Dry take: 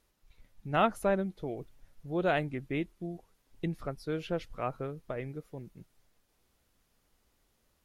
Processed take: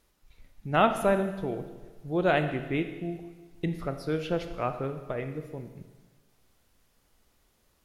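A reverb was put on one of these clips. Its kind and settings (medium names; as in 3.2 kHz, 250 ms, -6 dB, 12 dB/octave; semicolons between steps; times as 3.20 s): Schroeder reverb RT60 1.3 s, combs from 26 ms, DRR 8 dB; trim +4 dB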